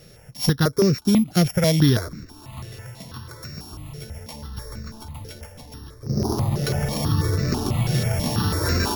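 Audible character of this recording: a buzz of ramps at a fixed pitch in blocks of 8 samples; notches that jump at a steady rate 6.1 Hz 260–3200 Hz

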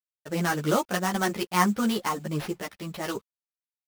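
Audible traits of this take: a quantiser's noise floor 10-bit, dither none; random-step tremolo; aliases and images of a low sample rate 7.6 kHz, jitter 20%; a shimmering, thickened sound

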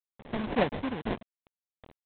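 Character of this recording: a quantiser's noise floor 8-bit, dither none; tremolo triangle 1.8 Hz, depth 75%; aliases and images of a low sample rate 1.3 kHz, jitter 20%; G.726

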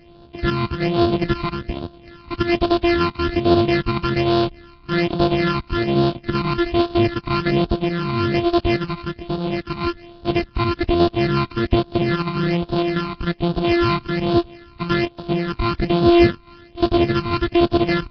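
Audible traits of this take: a buzz of ramps at a fixed pitch in blocks of 128 samples; phasing stages 12, 1.2 Hz, lowest notch 540–2100 Hz; Nellymoser

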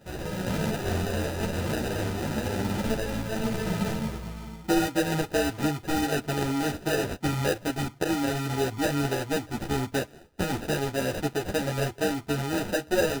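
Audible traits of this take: aliases and images of a low sample rate 1.1 kHz, jitter 0%; a shimmering, thickened sound

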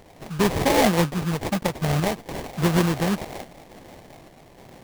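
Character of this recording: random-step tremolo; aliases and images of a low sample rate 1.4 kHz, jitter 20%; Vorbis

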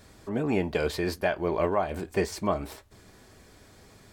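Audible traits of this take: noise floor -55 dBFS; spectral tilt -5.0 dB/octave

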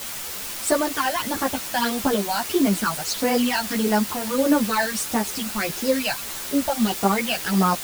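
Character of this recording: phasing stages 12, 1.6 Hz, lowest notch 350–3800 Hz; a quantiser's noise floor 6-bit, dither triangular; a shimmering, thickened sound

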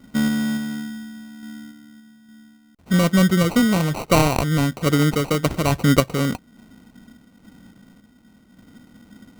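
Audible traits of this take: random-step tremolo; aliases and images of a low sample rate 1.7 kHz, jitter 0%

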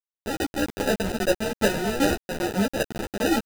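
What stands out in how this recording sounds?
aliases and images of a low sample rate 1.1 kHz, jitter 0%; tremolo saw down 2.5 Hz, depth 85%; a quantiser's noise floor 6-bit, dither none; a shimmering, thickened sound

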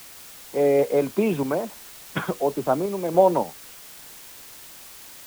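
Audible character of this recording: random-step tremolo; a quantiser's noise floor 8-bit, dither triangular

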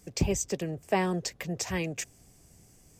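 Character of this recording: noise floor -60 dBFS; spectral tilt -4.5 dB/octave

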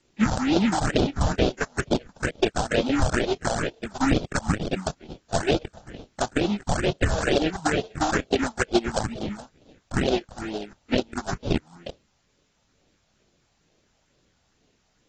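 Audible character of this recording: aliases and images of a low sample rate 1.1 kHz, jitter 20%; phasing stages 4, 2.2 Hz, lowest notch 350–1800 Hz; a quantiser's noise floor 12-bit, dither triangular; AAC

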